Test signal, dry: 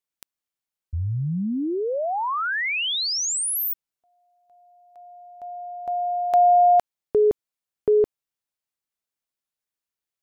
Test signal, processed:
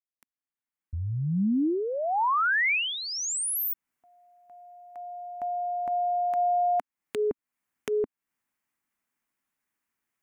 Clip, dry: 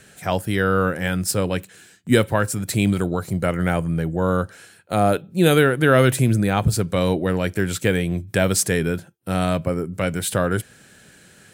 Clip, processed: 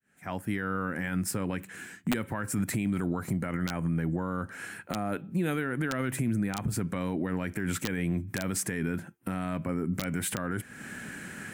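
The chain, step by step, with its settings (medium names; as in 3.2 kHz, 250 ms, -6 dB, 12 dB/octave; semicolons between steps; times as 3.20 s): fade-in on the opening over 2.68 s; compression 3:1, threshold -34 dBFS; ten-band graphic EQ 250 Hz +10 dB, 500 Hz -4 dB, 1 kHz +5 dB, 2 kHz +8 dB, 4 kHz -8 dB; integer overflow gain 15 dB; peak limiter -25 dBFS; trim +4 dB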